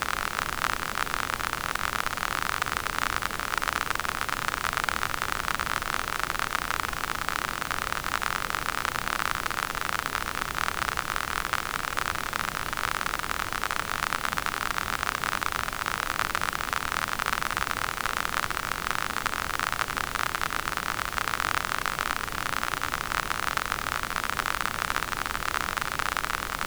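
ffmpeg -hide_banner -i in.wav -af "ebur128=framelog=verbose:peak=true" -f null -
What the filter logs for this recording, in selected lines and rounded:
Integrated loudness:
  I:         -28.5 LUFS
  Threshold: -38.5 LUFS
Loudness range:
  LRA:         0.7 LU
  Threshold: -48.5 LUFS
  LRA low:   -28.9 LUFS
  LRA high:  -28.2 LUFS
True peak:
  Peak:       -5.6 dBFS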